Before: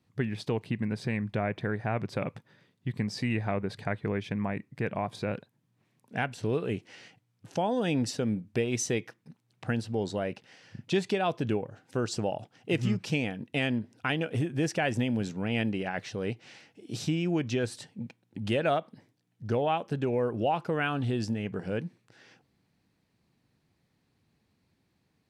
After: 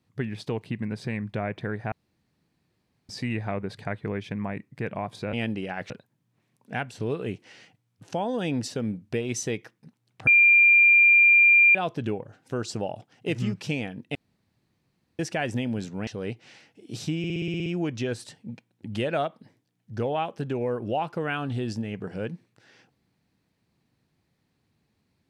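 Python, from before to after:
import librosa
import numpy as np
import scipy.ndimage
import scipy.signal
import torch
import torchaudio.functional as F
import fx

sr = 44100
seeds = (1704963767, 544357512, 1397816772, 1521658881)

y = fx.edit(x, sr, fx.room_tone_fill(start_s=1.92, length_s=1.17),
    fx.bleep(start_s=9.7, length_s=1.48, hz=2390.0, db=-13.0),
    fx.room_tone_fill(start_s=13.58, length_s=1.04),
    fx.move(start_s=15.5, length_s=0.57, to_s=5.33),
    fx.stutter(start_s=17.18, slice_s=0.06, count=9), tone=tone)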